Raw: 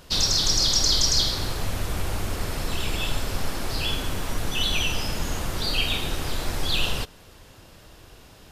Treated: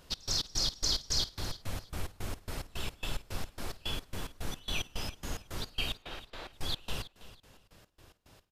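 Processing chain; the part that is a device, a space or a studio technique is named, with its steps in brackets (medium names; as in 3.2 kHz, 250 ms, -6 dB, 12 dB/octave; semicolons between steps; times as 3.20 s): 5.93–6.53 s: three-band isolator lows -12 dB, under 370 Hz, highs -18 dB, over 4.3 kHz; trance gate with a delay (trance gate "x.x.x.x." 109 bpm -24 dB; feedback delay 327 ms, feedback 25%, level -16 dB); trim -9 dB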